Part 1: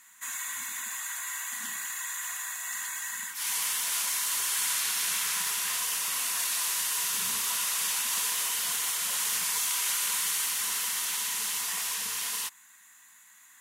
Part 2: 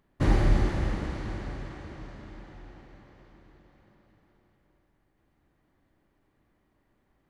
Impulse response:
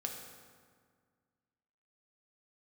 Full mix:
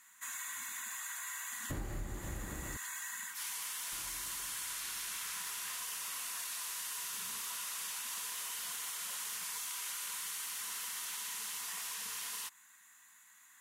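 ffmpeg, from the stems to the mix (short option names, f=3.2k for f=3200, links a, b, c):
-filter_complex "[0:a]volume=-6dB[a];[1:a]adelay=1500,volume=-5.5dB,asplit=3[b][c][d];[b]atrim=end=2.77,asetpts=PTS-STARTPTS,afade=t=out:st=2.766:d=0.004:c=hsin[e];[c]atrim=start=2.77:end=3.92,asetpts=PTS-STARTPTS,volume=0[f];[d]atrim=start=3.92,asetpts=PTS-STARTPTS,afade=t=in:d=0.004:c=hsin[g];[e][f][g]concat=n=3:v=0:a=1[h];[a][h]amix=inputs=2:normalize=0,equalizer=f=1.3k:t=o:w=0.77:g=2.5,acompressor=threshold=-38dB:ratio=6"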